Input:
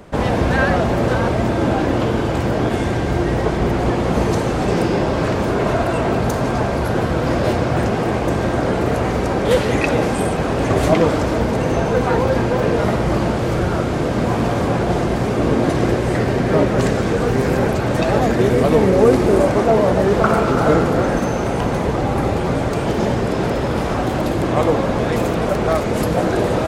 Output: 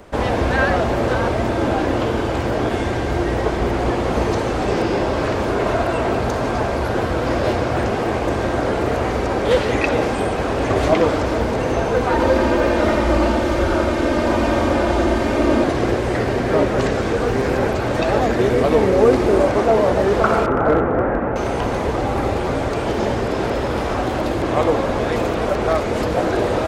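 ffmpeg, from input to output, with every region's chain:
-filter_complex "[0:a]asettb=1/sr,asplit=3[a][b][c];[a]atrim=end=12.114[d];[b]atrim=start=12.11:end=15.64,asetpts=PTS-STARTPTS,afade=t=in:d=0.004:c=qsin,afade=t=out:st=3.526:d=0.004:c=qsin,aecho=1:1:3.3:0.55,atrim=end_sample=155673,aecho=1:1:87:0.668,atrim=end_sample=155673[e];[c]atrim=start=15.636[f];[d][e]acrossfade=d=0.004:c1=hsin:c2=qsin[g];[g][f]acrossfade=d=0.004:c1=qsin:c2=hsin,asettb=1/sr,asplit=3[h][i][j];[h]atrim=end=20.464[k];[i]atrim=start=20.46:end=21.36,asetpts=PTS-STARTPTS,afade=t=in:d=0.004:c=qsin,afade=t=out:st=0.896:d=0.004:c=qsin,lowpass=f=1.9k:w=0.5412,lowpass=f=1.9k:w=1.3066,aeval=exprs='clip(val(0),-1,0.376)':c=same[l];[j]atrim=start=21.356[m];[k][l]acrossfade=d=0.004:c1=hsin:c2=qsin[n];[n][m]acrossfade=d=0.004:c1=qsin:c2=hsin,acrossover=split=6400[o][p];[p]acompressor=threshold=-47dB:ratio=4:attack=1:release=60[q];[o][q]amix=inputs=2:normalize=0,equalizer=f=160:t=o:w=0.9:g=-8.5"

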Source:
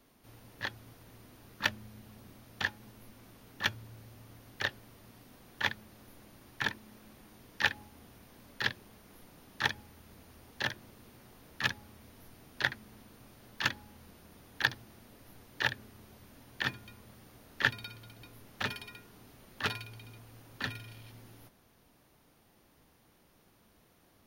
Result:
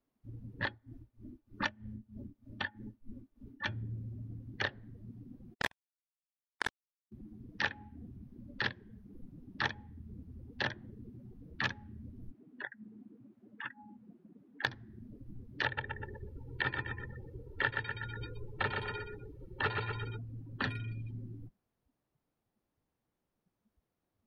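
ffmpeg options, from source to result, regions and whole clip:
-filter_complex "[0:a]asettb=1/sr,asplit=3[a][b][c];[a]atrim=end=0.654[d];[b]atrim=start=0.65:end=3.69,asetpts=PTS-STARTPTS,afade=t=in:d=0.004:c=qsin,afade=t=out:st=3.036:d=0.004:c=qsin,aeval=exprs='val(0)+0.000562*sin(2*PI*420*n/s)':c=same,aecho=1:1:3.4:0.39,atrim=end_sample=134064,tremolo=f=3.2:d=0.74[e];[c]atrim=start=3.686[f];[d][e]acrossfade=d=0.004:c1=hsin:c2=qsin[g];[g][f]acrossfade=d=0.004:c1=qsin:c2=hsin,asettb=1/sr,asplit=3[h][i][j];[h]atrim=end=5.544[k];[i]atrim=start=5.54:end=7.12,asetpts=PTS-STARTPTS,afade=t=in:d=0.004:c=qsin,afade=t=out:st=1.576:d=0.004:c=qsin,agate=range=-33dB:threshold=-44dB:ratio=3:release=100:detection=peak,acrusher=bits=3:mix=0:aa=0.5[l];[j]atrim=start=7.116[m];[k][l]acrossfade=d=0.004:c1=hsin:c2=qsin[n];[n][m]acrossfade=d=0.004:c1=qsin:c2=hsin,asettb=1/sr,asplit=3[o][p][q];[o]atrim=end=12.314[r];[p]atrim=start=12.31:end=14.65,asetpts=PTS-STARTPTS,afade=t=in:d=0.004:c=qsin,afade=t=out:st=2.336:d=0.004:c=qsin,bass=f=250:g=-2,treble=f=4k:g=-13,acompressor=threshold=-51dB:ratio=2.5:attack=3.2:release=140:knee=1:detection=peak,highpass=160[s];[q]atrim=start=14.646[t];[r][s]acrossfade=d=0.004:c1=hsin:c2=qsin[u];[u][t]acrossfade=d=0.004:c1=qsin:c2=hsin,asettb=1/sr,asplit=3[v][w][x];[v]atrim=end=15.654[y];[w]atrim=start=15.65:end=20.17,asetpts=PTS-STARTPTS,afade=t=in:d=0.004:c=qsin,afade=t=out:st=4.516:d=0.004:c=qsin,acrossover=split=3600[z][aa];[aa]acompressor=threshold=-52dB:ratio=4:attack=1:release=60[ab];[z][ab]amix=inputs=2:normalize=0,aecho=1:1:2.2:0.56,atrim=end_sample=199332,aecho=1:1:122|244|366|488|610:0.501|0.205|0.0842|0.0345|0.0142,atrim=end_sample=199332[ac];[x]atrim=start=20.166[ad];[y][ac]acrossfade=d=0.004:c1=hsin:c2=qsin[ae];[ae][ad]acrossfade=d=0.004:c1=qsin:c2=hsin,afftdn=nr=30:nf=-47,acompressor=threshold=-42dB:ratio=3,highshelf=f=2k:g=-8.5,volume=11.5dB"

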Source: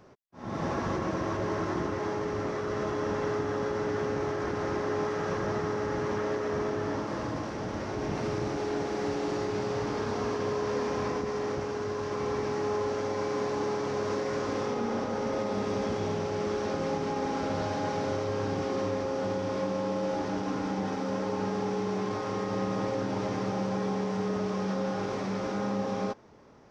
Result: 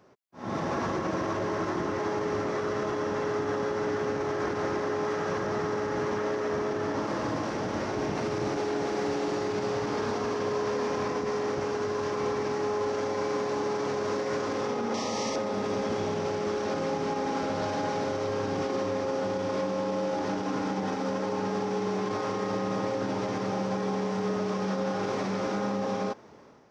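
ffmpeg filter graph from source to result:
-filter_complex "[0:a]asettb=1/sr,asplit=3[a][b][c];[a]atrim=end=14.944[d];[b]atrim=start=14.94:end=15.36,asetpts=PTS-STARTPTS,afade=t=in:d=0.004:c=qsin,afade=t=out:st=0.416:d=0.004:c=qsin,asuperstop=centerf=1500:order=8:qfactor=3.9,equalizer=f=5.8k:t=o:w=2.3:g=12.5,bandreject=f=60:t=h:w=6,bandreject=f=120:t=h:w=6,bandreject=f=180:t=h:w=6,bandreject=f=240:t=h:w=6,bandreject=f=300:t=h:w=6,bandreject=f=360:t=h:w=6,bandreject=f=420:t=h:w=6,bandreject=f=480:t=h:w=6,bandreject=f=540:t=h:w=6,bandreject=f=600:t=h:w=6[e];[c]atrim=start=15.356[f];[d][e]acrossfade=d=0.004:c1=hsin:c2=qsin[g];[g][f]acrossfade=d=0.004:c1=qsin:c2=hsin,dynaudnorm=f=140:g=5:m=8dB,highpass=f=150:p=1,alimiter=limit=-18.5dB:level=0:latency=1:release=60,volume=-3dB"

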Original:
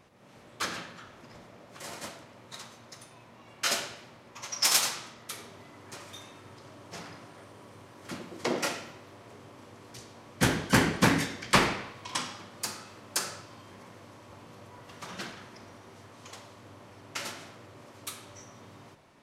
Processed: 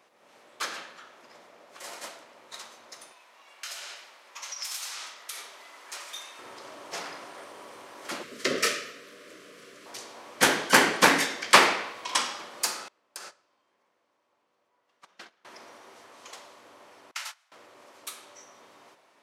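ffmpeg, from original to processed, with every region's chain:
-filter_complex "[0:a]asettb=1/sr,asplit=3[a][b][c];[a]atrim=end=3.124[d];[b]atrim=start=3.12:end=6.39,asetpts=PTS-STARTPTS,afade=t=in:d=0.004:c=qsin,afade=t=out:st=3.266:d=0.004:c=qsin,highpass=f=1.3k:p=1,acompressor=threshold=-40dB:ratio=6:attack=3.2:release=140:knee=1:detection=peak[e];[c]atrim=start=6.386[f];[d][e]acrossfade=d=0.004:c1=hsin:c2=qsin[g];[g][f]acrossfade=d=0.004:c1=qsin:c2=hsin,asettb=1/sr,asplit=3[h][i][j];[h]atrim=end=8.234[k];[i]atrim=start=8.23:end=9.86,asetpts=PTS-STARTPTS,afade=t=in:d=0.004:c=qsin,afade=t=out:st=1.626:d=0.004:c=qsin,afreqshift=-100,asuperstop=centerf=850:order=4:qfactor=1.4[l];[j]atrim=start=9.856[m];[k][l]acrossfade=d=0.004:c1=hsin:c2=qsin[n];[n][m]acrossfade=d=0.004:c1=qsin:c2=hsin,asettb=1/sr,asplit=3[o][p][q];[o]atrim=end=12.884[r];[p]atrim=start=12.88:end=15.45,asetpts=PTS-STARTPTS,afade=t=in:d=0.004:c=qsin,afade=t=out:st=2.566:d=0.004:c=qsin,agate=range=-26dB:threshold=-39dB:ratio=16:release=100:detection=peak,highshelf=f=7.3k:g=-7.5,acompressor=threshold=-43dB:ratio=16:attack=3.2:release=140:knee=1:detection=peak[s];[q]atrim=start=15.446[t];[r][s]acrossfade=d=0.004:c1=hsin:c2=qsin[u];[u][t]acrossfade=d=0.004:c1=qsin:c2=hsin,asettb=1/sr,asplit=3[v][w][x];[v]atrim=end=17.114[y];[w]atrim=start=17.11:end=17.52,asetpts=PTS-STARTPTS,afade=t=in:d=0.004:c=qsin,afade=t=out:st=0.406:d=0.004:c=qsin,agate=range=-20dB:threshold=-40dB:ratio=16:release=100:detection=peak,highpass=f=850:w=0.5412,highpass=f=850:w=1.3066[z];[x]atrim=start=17.516[aa];[y][z]acrossfade=d=0.004:c1=hsin:c2=qsin[ab];[ab][aa]acrossfade=d=0.004:c1=qsin:c2=hsin,highpass=440,dynaudnorm=f=550:g=17:m=11.5dB"

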